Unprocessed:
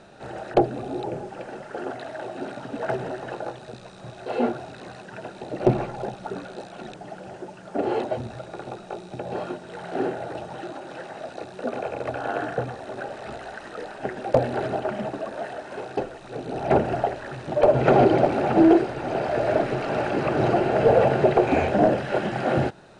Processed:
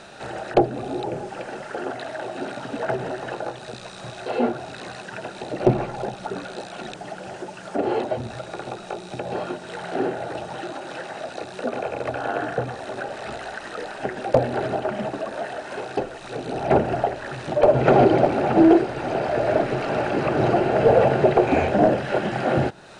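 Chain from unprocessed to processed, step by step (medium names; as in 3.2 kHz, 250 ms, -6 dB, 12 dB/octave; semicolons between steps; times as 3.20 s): tape noise reduction on one side only encoder only; trim +1.5 dB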